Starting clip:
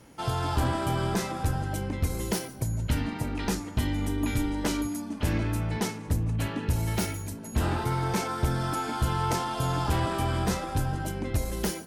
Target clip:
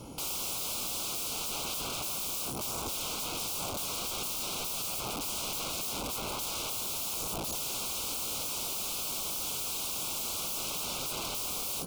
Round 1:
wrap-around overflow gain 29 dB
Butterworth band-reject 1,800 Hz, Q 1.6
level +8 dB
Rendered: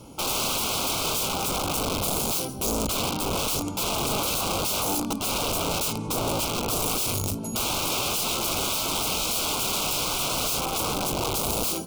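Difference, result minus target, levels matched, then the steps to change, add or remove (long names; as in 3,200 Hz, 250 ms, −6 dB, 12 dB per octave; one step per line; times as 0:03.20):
wrap-around overflow: distortion −30 dB
change: wrap-around overflow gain 38 dB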